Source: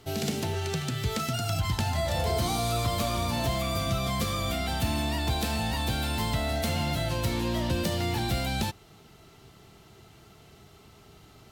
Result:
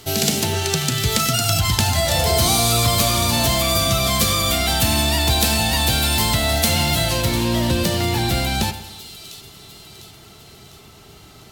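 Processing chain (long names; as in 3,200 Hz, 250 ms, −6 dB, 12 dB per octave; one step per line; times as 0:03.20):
high-shelf EQ 3,000 Hz +11 dB, from 0:07.22 +4 dB
echo with a time of its own for lows and highs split 2,900 Hz, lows 94 ms, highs 701 ms, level −12.5 dB
level +7.5 dB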